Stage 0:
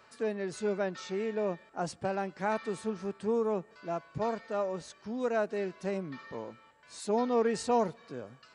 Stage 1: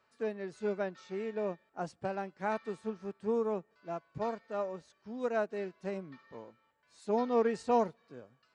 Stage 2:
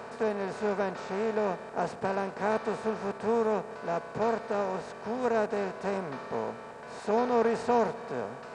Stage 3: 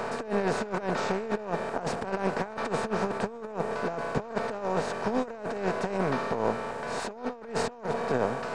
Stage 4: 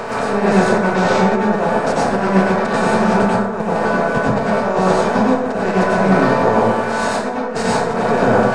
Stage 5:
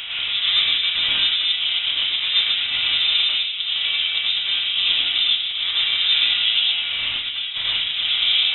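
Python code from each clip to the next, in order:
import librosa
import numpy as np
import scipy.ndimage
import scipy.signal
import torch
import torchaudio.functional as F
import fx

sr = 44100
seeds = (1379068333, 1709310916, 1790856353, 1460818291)

y1 = fx.high_shelf(x, sr, hz=8000.0, db=-7.5)
y1 = fx.upward_expand(y1, sr, threshold_db=-50.0, expansion=1.5)
y2 = fx.bin_compress(y1, sr, power=0.4)
y3 = np.where(y2 < 0.0, 10.0 ** (-3.0 / 20.0) * y2, y2)
y3 = fx.over_compress(y3, sr, threshold_db=-35.0, ratio=-0.5)
y3 = y3 * 10.0 ** (6.0 / 20.0)
y4 = fx.rev_plate(y3, sr, seeds[0], rt60_s=1.0, hf_ratio=0.5, predelay_ms=80, drr_db=-6.5)
y4 = y4 * 10.0 ** (7.0 / 20.0)
y5 = y4 + 10.0 ** (-11.0 / 20.0) * np.pad(y4, (int(106 * sr / 1000.0), 0))[:len(y4)]
y5 = fx.freq_invert(y5, sr, carrier_hz=3800)
y5 = y5 * 10.0 ** (-5.5 / 20.0)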